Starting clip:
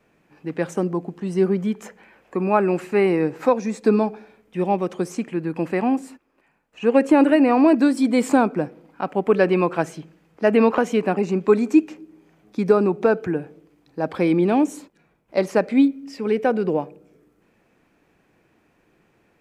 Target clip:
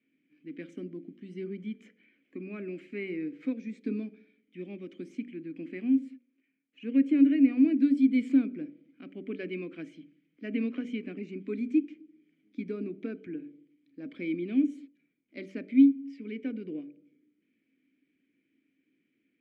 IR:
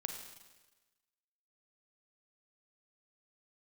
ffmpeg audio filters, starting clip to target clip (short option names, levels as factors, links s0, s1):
-filter_complex "[0:a]asplit=3[s0][s1][s2];[s0]bandpass=f=270:t=q:w=8,volume=1[s3];[s1]bandpass=f=2290:t=q:w=8,volume=0.501[s4];[s2]bandpass=f=3010:t=q:w=8,volume=0.355[s5];[s3][s4][s5]amix=inputs=3:normalize=0,bandreject=f=48.28:t=h:w=4,bandreject=f=96.56:t=h:w=4,bandreject=f=144.84:t=h:w=4,bandreject=f=193.12:t=h:w=4,bandreject=f=241.4:t=h:w=4,bandreject=f=289.68:t=h:w=4,bandreject=f=337.96:t=h:w=4,bandreject=f=386.24:t=h:w=4,bandreject=f=434.52:t=h:w=4,bandreject=f=482.8:t=h:w=4,bandreject=f=531.08:t=h:w=4,bandreject=f=579.36:t=h:w=4,bandreject=f=627.64:t=h:w=4,volume=0.794"